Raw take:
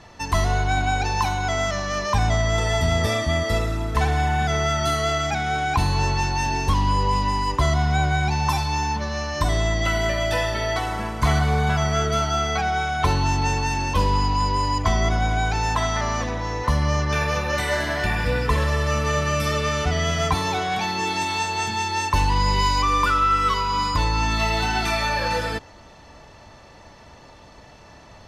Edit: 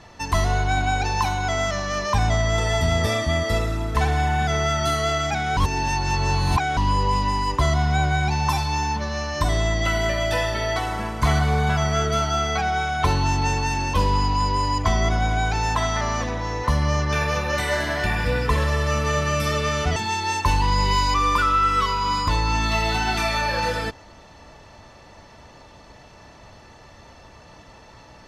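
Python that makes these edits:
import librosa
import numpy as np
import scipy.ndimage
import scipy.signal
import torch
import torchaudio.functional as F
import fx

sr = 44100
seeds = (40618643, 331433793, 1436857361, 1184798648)

y = fx.edit(x, sr, fx.reverse_span(start_s=5.57, length_s=1.2),
    fx.cut(start_s=19.96, length_s=1.68), tone=tone)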